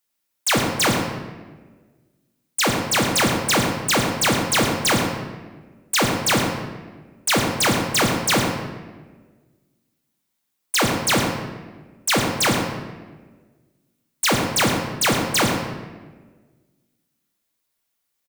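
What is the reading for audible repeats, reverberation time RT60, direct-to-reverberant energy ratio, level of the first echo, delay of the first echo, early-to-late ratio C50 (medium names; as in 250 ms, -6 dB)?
1, 1.4 s, 0.5 dB, -9.0 dB, 109 ms, 3.5 dB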